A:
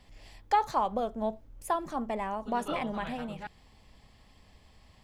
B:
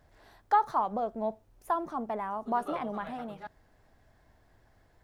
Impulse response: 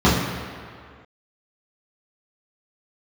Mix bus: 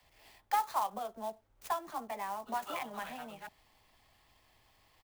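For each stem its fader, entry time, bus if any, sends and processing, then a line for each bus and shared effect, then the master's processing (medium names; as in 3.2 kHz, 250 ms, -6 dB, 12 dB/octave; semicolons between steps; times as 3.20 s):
-3.5 dB, 0.00 s, no send, inverse Chebyshev high-pass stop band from 160 Hz, stop band 70 dB
-7.5 dB, 16 ms, no send, elliptic low-pass 990 Hz; compression, threshold -35 dBFS, peak gain reduction 13.5 dB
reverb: none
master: sampling jitter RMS 0.026 ms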